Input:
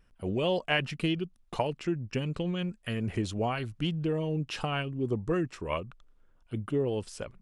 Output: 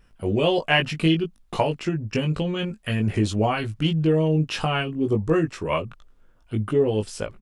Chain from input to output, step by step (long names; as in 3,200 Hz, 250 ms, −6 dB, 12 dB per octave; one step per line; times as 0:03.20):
double-tracking delay 19 ms −4 dB
level +6.5 dB